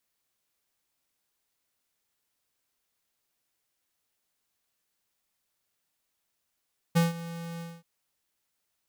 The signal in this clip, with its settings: ADSR square 168 Hz, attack 19 ms, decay 157 ms, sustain -17.5 dB, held 0.65 s, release 229 ms -20.5 dBFS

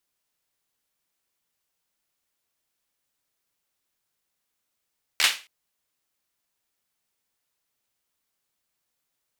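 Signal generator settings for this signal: hand clap length 0.27 s, apart 13 ms, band 2.7 kHz, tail 0.31 s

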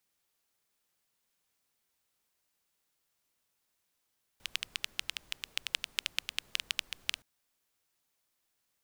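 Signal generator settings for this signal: rain from filtered ticks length 2.82 s, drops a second 9.3, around 2.9 kHz, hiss -22.5 dB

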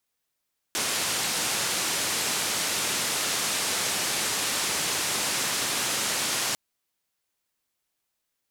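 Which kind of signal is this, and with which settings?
noise band 120–9100 Hz, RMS -27.5 dBFS 5.80 s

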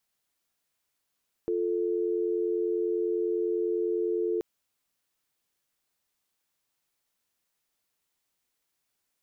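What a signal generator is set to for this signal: call progress tone dial tone, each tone -28 dBFS 2.93 s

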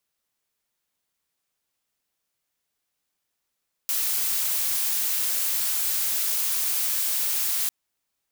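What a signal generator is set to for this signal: noise blue, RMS -25 dBFS 3.80 s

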